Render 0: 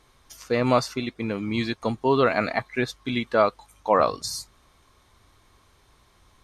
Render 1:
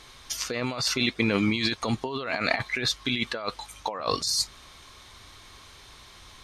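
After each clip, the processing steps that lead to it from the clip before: peaking EQ 3.9 kHz +10 dB 2.5 oct; compressor with a negative ratio -28 dBFS, ratio -1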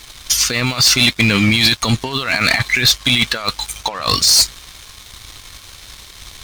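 peaking EQ 510 Hz -15 dB 2.9 oct; waveshaping leveller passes 3; trim +8.5 dB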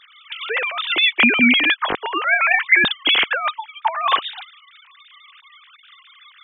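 formants replaced by sine waves; trim -3 dB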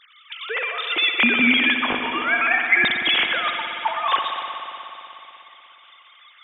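spring tank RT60 3.3 s, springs 59 ms, chirp 70 ms, DRR 3 dB; trim -4 dB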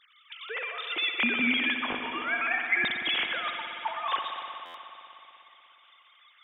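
buffer glitch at 4.65 s, samples 512, times 7; trim -9 dB

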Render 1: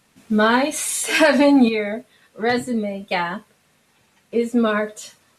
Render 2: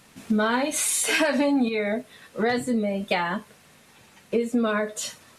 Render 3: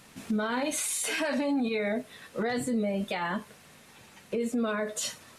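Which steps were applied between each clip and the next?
compression 4:1, threshold -29 dBFS, peak gain reduction 16 dB; trim +6.5 dB
peak limiter -22 dBFS, peak gain reduction 11 dB

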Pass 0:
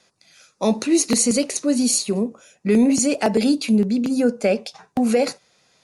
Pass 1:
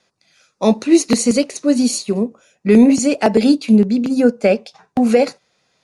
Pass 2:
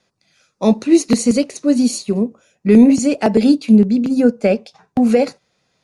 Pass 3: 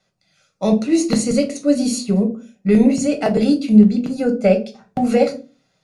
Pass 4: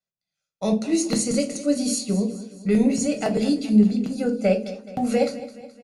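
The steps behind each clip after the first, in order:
treble shelf 8.8 kHz -11.5 dB; upward expansion 1.5:1, over -31 dBFS; trim +7 dB
bass shelf 290 Hz +7 dB; trim -3 dB
level rider; reverberation RT60 0.35 s, pre-delay 5 ms, DRR 4.5 dB; trim -5 dB
gate with hold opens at -32 dBFS; treble shelf 4.7 kHz +8 dB; feedback delay 212 ms, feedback 50%, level -15 dB; trim -6 dB

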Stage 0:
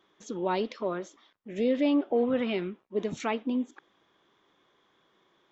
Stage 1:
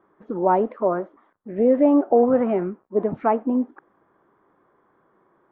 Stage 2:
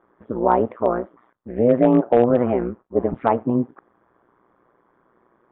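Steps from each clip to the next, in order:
dynamic bell 730 Hz, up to +7 dB, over -44 dBFS, Q 1.7; low-pass 1.5 kHz 24 dB/octave; trim +7 dB
AM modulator 120 Hz, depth 75%; overload inside the chain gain 10.5 dB; resampled via 8 kHz; trim +5 dB

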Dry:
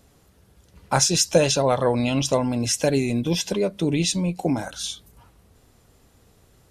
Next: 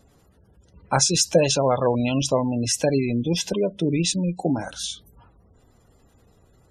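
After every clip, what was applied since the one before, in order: spectral gate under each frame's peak -25 dB strong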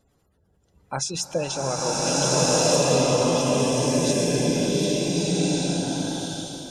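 hum notches 60/120/180/240 Hz; swelling reverb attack 1510 ms, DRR -9.5 dB; trim -8.5 dB

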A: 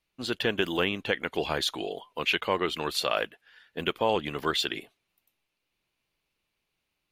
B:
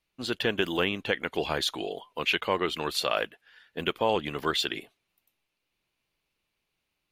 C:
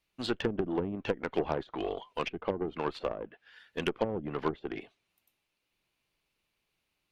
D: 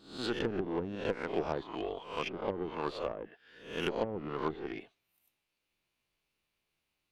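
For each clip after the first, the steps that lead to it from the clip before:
no audible change
low-pass that closes with the level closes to 310 Hz, closed at -22.5 dBFS; Chebyshev shaper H 8 -24 dB, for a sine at -14 dBFS
reverse spectral sustain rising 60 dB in 0.50 s; trim -4.5 dB

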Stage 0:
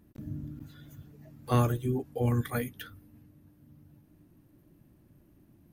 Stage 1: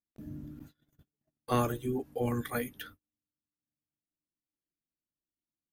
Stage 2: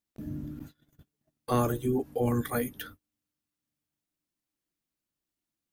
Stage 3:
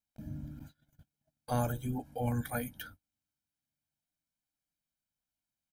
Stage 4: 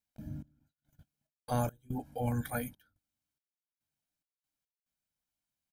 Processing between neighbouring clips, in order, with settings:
peaking EQ 110 Hz -9 dB 1.3 oct; gate -50 dBFS, range -38 dB
dynamic bell 2.5 kHz, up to -6 dB, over -51 dBFS, Q 0.86; in parallel at 0 dB: peak limiter -27 dBFS, peak gain reduction 11.5 dB
comb 1.3 ms, depth 79%; trim -6.5 dB
trance gate "xx..xx.x.xxxx." 71 bpm -24 dB

